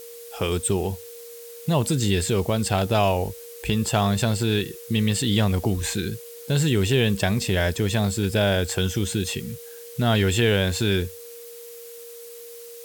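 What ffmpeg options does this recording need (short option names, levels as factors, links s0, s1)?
-af "bandreject=f=470:w=30,afftdn=nr=28:nf=-41"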